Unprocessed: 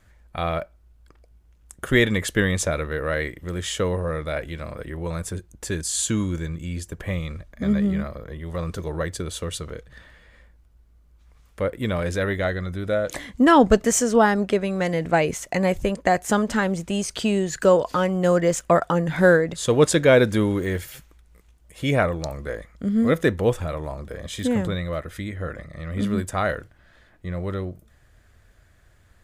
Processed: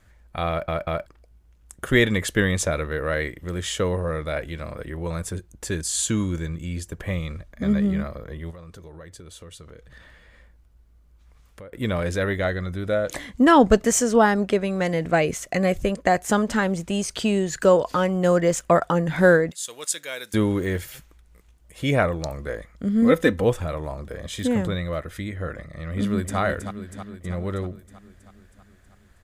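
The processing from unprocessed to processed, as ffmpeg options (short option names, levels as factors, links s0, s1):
-filter_complex "[0:a]asplit=3[s0][s1][s2];[s0]afade=t=out:st=8.5:d=0.02[s3];[s1]acompressor=threshold=0.00794:ratio=4:attack=3.2:release=140:knee=1:detection=peak,afade=t=in:st=8.5:d=0.02,afade=t=out:st=11.72:d=0.02[s4];[s2]afade=t=in:st=11.72:d=0.02[s5];[s3][s4][s5]amix=inputs=3:normalize=0,asettb=1/sr,asplit=3[s6][s7][s8];[s6]atrim=end=15.124[s9];[s7]atrim=start=15.12:end=16.06,asetpts=PTS-STARTPTS,afade=t=in:d=0.004:c=qsin,afade=t=out:st=0.936:d=0.004:c=qsin,asuperstop=centerf=900:order=4:qfactor=5.2[s10];[s8]atrim=start=16.056[s11];[s9][s10]acrossfade=d=0.004:c1=hsin:c2=qsin[s12];[s12][s11]acrossfade=d=0.004:c1=qsin:c2=hsin,asettb=1/sr,asplit=3[s13][s14][s15];[s13]atrim=end=19.514[s16];[s14]atrim=start=19.51:end=20.34,asetpts=PTS-STARTPTS,afade=t=in:d=0.004:c=qsin,afade=t=out:st=0.826:d=0.004:c=qsin,aderivative[s17];[s15]atrim=start=20.336[s18];[s16][s17]acrossfade=d=0.004:c1=hsin:c2=qsin[s19];[s19][s18]acrossfade=d=0.004:c1=qsin:c2=hsin,asettb=1/sr,asplit=3[s20][s21][s22];[s20]atrim=end=23.024[s23];[s21]atrim=start=23.02:end=23.44,asetpts=PTS-STARTPTS,afade=t=in:d=0.004:c=qsin,afade=t=out:st=0.416:d=0.004:c=qsin,aecho=1:1:3.9:0.65,atrim=end_sample=18522[s24];[s22]atrim=start=23.436[s25];[s23][s24]acrossfade=d=0.004:c1=hsin:c2=qsin[s26];[s26][s25]acrossfade=d=0.004:c1=qsin:c2=hsin,asplit=2[s27][s28];[s28]afade=t=in:st=25.92:d=0.01,afade=t=out:st=26.38:d=0.01,aecho=0:1:320|640|960|1280|1600|1920|2240|2560|2880:0.398107|0.25877|0.1682|0.10933|0.0710646|0.046192|0.0300248|0.0195161|0.0126855[s29];[s27][s29]amix=inputs=2:normalize=0,asplit=4[s30][s31][s32][s33];[s30]atrim=end=0.682[s34];[s31]atrim=start=0.488:end=0.682[s35];[s32]atrim=start=0.488:end=0.682[s36];[s33]atrim=start=1.058[s37];[s34][s35]acrossfade=d=0.004:c1=hsin:c2=hsin[s38];[s38][s36]acrossfade=d=0.004:c1=hsin:c2=hsin[s39];[s39][s37]acrossfade=d=0.004:c1=hsin:c2=hsin"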